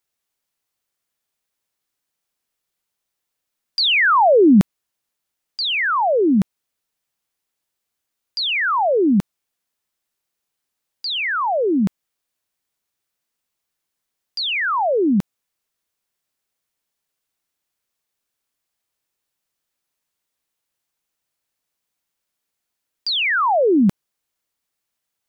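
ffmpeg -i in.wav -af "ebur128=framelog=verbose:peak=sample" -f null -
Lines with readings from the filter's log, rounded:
Integrated loudness:
  I:         -17.5 LUFS
  Threshold: -28.0 LUFS
Loudness range:
  LRA:         8.7 LU
  Threshold: -41.7 LUFS
  LRA low:   -26.1 LUFS
  LRA high:  -17.4 LUFS
Sample peak:
  Peak:       -6.2 dBFS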